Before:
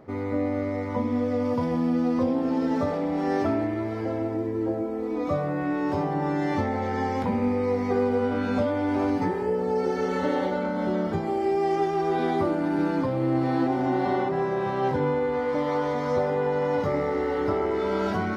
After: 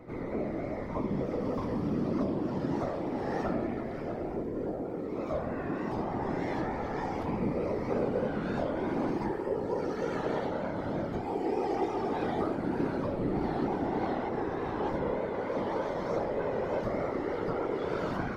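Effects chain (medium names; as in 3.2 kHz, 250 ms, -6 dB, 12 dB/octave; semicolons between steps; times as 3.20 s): vibrato 3.3 Hz 74 cents; whisper effect; pre-echo 140 ms -13.5 dB; trim -7 dB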